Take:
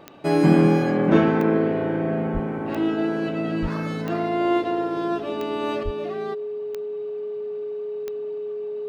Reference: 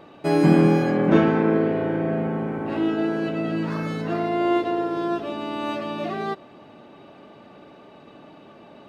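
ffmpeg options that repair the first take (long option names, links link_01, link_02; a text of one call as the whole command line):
ffmpeg -i in.wav -filter_complex "[0:a]adeclick=threshold=4,bandreject=frequency=420:width=30,asplit=3[link_01][link_02][link_03];[link_01]afade=type=out:start_time=2.33:duration=0.02[link_04];[link_02]highpass=frequency=140:width=0.5412,highpass=frequency=140:width=1.3066,afade=type=in:start_time=2.33:duration=0.02,afade=type=out:start_time=2.45:duration=0.02[link_05];[link_03]afade=type=in:start_time=2.45:duration=0.02[link_06];[link_04][link_05][link_06]amix=inputs=3:normalize=0,asplit=3[link_07][link_08][link_09];[link_07]afade=type=out:start_time=3.61:duration=0.02[link_10];[link_08]highpass=frequency=140:width=0.5412,highpass=frequency=140:width=1.3066,afade=type=in:start_time=3.61:duration=0.02,afade=type=out:start_time=3.73:duration=0.02[link_11];[link_09]afade=type=in:start_time=3.73:duration=0.02[link_12];[link_10][link_11][link_12]amix=inputs=3:normalize=0,asplit=3[link_13][link_14][link_15];[link_13]afade=type=out:start_time=5.84:duration=0.02[link_16];[link_14]highpass=frequency=140:width=0.5412,highpass=frequency=140:width=1.3066,afade=type=in:start_time=5.84:duration=0.02,afade=type=out:start_time=5.96:duration=0.02[link_17];[link_15]afade=type=in:start_time=5.96:duration=0.02[link_18];[link_16][link_17][link_18]amix=inputs=3:normalize=0,asetnsamples=nb_out_samples=441:pad=0,asendcmd='5.83 volume volume 6dB',volume=0dB" out.wav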